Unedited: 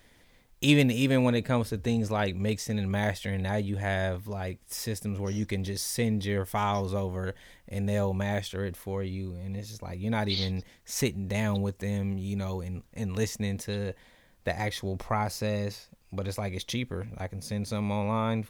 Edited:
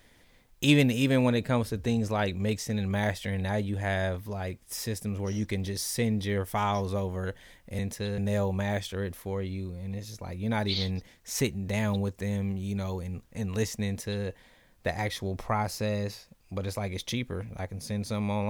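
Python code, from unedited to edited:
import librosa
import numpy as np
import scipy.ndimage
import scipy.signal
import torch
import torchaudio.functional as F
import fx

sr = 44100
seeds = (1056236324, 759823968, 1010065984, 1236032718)

y = fx.edit(x, sr, fx.duplicate(start_s=13.47, length_s=0.39, to_s=7.79), tone=tone)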